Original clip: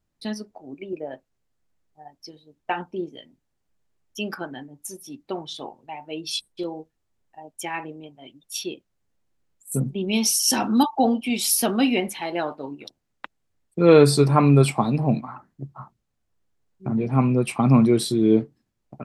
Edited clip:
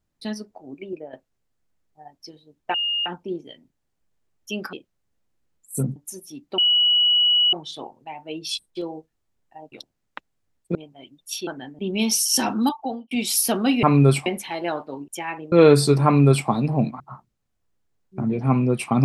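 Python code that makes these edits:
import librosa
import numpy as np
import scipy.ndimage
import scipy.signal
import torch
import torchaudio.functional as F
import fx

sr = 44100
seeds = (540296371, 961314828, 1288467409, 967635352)

y = fx.edit(x, sr, fx.fade_out_to(start_s=0.88, length_s=0.25, floor_db=-9.0),
    fx.insert_tone(at_s=2.74, length_s=0.32, hz=2840.0, db=-21.0),
    fx.swap(start_s=4.41, length_s=0.32, other_s=8.7, other_length_s=1.23),
    fx.insert_tone(at_s=5.35, length_s=0.95, hz=2930.0, db=-14.5),
    fx.swap(start_s=7.54, length_s=0.44, other_s=12.79, other_length_s=1.03),
    fx.fade_out_span(start_s=10.62, length_s=0.63),
    fx.duplicate(start_s=14.35, length_s=0.43, to_s=11.97),
    fx.cut(start_s=15.3, length_s=0.38), tone=tone)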